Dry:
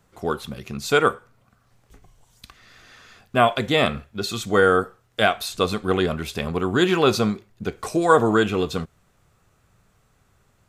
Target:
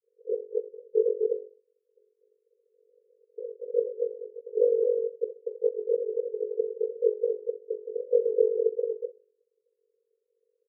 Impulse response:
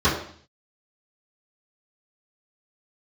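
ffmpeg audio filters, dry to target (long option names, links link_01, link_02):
-filter_complex "[0:a]acompressor=threshold=-19dB:ratio=6,asuperpass=centerf=460:order=20:qfactor=6.5,aecho=1:1:247:0.668,asplit=2[link_01][link_02];[1:a]atrim=start_sample=2205[link_03];[link_02][link_03]afir=irnorm=-1:irlink=0,volume=-36dB[link_04];[link_01][link_04]amix=inputs=2:normalize=0,tremolo=f=47:d=0.857,volume=7.5dB"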